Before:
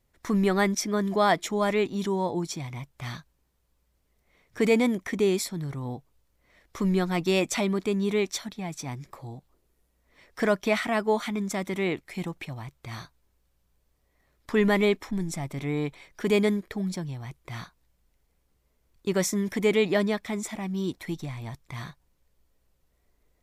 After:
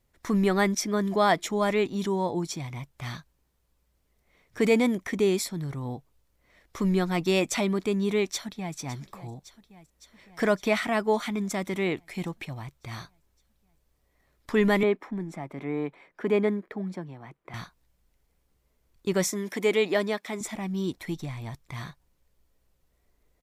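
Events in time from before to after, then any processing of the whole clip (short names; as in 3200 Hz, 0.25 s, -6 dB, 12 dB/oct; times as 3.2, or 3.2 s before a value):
8.31–8.77 echo throw 0.56 s, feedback 70%, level -15 dB
14.83–17.54 three-band isolator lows -21 dB, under 170 Hz, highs -17 dB, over 2300 Hz
19.3–20.41 HPF 270 Hz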